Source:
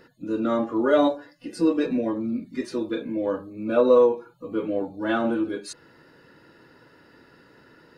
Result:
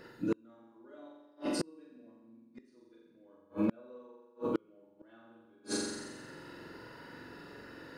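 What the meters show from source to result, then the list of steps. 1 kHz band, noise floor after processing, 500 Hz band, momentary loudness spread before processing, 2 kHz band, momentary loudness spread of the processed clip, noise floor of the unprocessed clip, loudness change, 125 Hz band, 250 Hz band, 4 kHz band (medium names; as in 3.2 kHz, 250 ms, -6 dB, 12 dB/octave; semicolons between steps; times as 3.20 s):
-18.0 dB, -64 dBFS, -19.5 dB, 13 LU, -13.5 dB, 23 LU, -56 dBFS, -15.0 dB, -7.0 dB, -13.5 dB, -6.0 dB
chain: flutter echo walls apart 7.6 m, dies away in 1.2 s; inverted gate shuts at -19 dBFS, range -37 dB; wavefolder -21 dBFS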